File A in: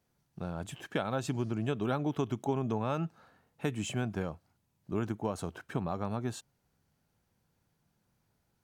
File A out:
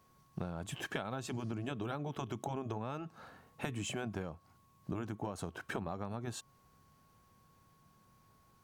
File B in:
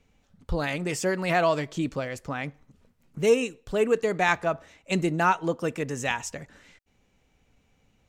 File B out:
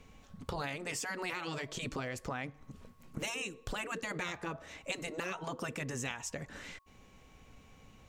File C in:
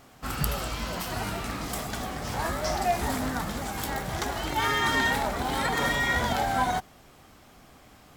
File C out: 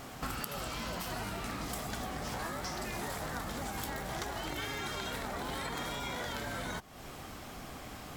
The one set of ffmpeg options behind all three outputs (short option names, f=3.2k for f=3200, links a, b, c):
-af "afftfilt=real='re*lt(hypot(re,im),0.2)':imag='im*lt(hypot(re,im),0.2)':win_size=1024:overlap=0.75,acompressor=threshold=-43dB:ratio=10,aeval=exprs='val(0)+0.000158*sin(2*PI*1100*n/s)':c=same,volume=7.5dB"